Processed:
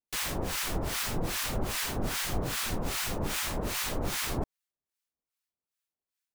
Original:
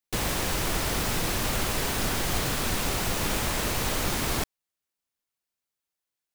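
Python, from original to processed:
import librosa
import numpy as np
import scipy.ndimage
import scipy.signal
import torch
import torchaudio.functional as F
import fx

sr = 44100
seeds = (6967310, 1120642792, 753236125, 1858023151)

y = fx.harmonic_tremolo(x, sr, hz=2.5, depth_pct=100, crossover_hz=980.0)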